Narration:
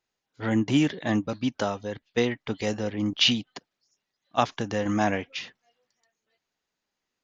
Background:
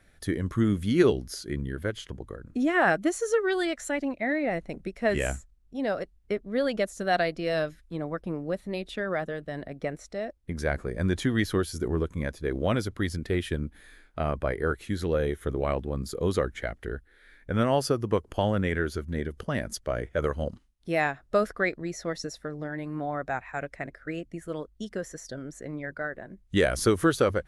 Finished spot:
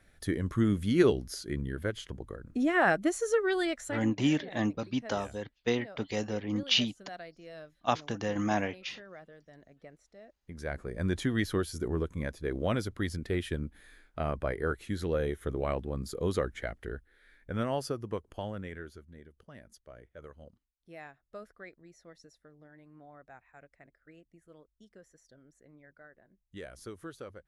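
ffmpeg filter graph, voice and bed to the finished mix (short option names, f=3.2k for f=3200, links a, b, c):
-filter_complex "[0:a]adelay=3500,volume=-5dB[a];[1:a]volume=13dB,afade=t=out:st=3.71:d=0.47:silence=0.141254,afade=t=in:st=10.27:d=0.83:silence=0.16788,afade=t=out:st=16.67:d=2.52:silence=0.133352[b];[a][b]amix=inputs=2:normalize=0"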